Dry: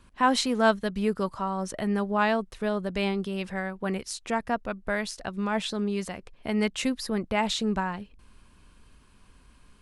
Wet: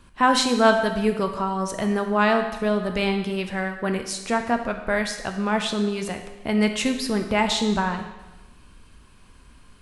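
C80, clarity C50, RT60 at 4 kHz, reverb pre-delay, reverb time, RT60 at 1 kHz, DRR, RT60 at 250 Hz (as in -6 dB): 10.0 dB, 8.0 dB, 1.1 s, 12 ms, 1.1 s, 1.1 s, 5.5 dB, 1.2 s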